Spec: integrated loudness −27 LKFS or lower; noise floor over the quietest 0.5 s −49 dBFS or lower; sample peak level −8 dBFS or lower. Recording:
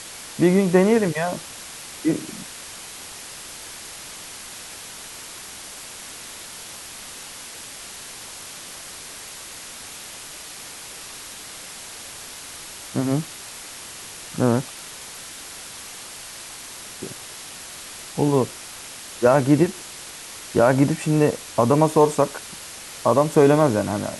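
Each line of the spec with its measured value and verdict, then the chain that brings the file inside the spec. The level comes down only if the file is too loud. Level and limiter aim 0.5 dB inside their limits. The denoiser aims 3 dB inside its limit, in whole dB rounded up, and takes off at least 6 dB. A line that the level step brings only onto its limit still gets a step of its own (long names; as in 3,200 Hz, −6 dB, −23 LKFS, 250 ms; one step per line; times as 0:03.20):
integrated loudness −20.5 LKFS: out of spec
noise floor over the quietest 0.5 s −38 dBFS: out of spec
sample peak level −4.0 dBFS: out of spec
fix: broadband denoise 7 dB, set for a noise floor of −38 dBFS
level −7 dB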